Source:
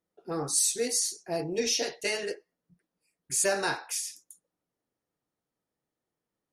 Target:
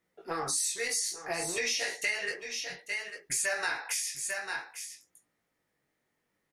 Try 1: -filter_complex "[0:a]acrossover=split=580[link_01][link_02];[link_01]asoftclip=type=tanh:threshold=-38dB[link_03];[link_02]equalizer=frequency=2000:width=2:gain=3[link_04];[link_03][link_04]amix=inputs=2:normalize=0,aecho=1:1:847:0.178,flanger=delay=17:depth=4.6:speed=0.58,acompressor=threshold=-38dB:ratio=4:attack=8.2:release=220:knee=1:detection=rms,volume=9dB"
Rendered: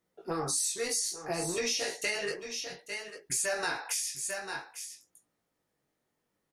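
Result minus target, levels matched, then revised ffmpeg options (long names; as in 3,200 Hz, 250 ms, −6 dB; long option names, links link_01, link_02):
2,000 Hz band −3.5 dB; soft clipping: distortion −4 dB
-filter_complex "[0:a]acrossover=split=580[link_01][link_02];[link_01]asoftclip=type=tanh:threshold=-47.5dB[link_03];[link_02]equalizer=frequency=2000:width=2:gain=10.5[link_04];[link_03][link_04]amix=inputs=2:normalize=0,aecho=1:1:847:0.178,flanger=delay=17:depth=4.6:speed=0.58,acompressor=threshold=-38dB:ratio=4:attack=8.2:release=220:knee=1:detection=rms,volume=9dB"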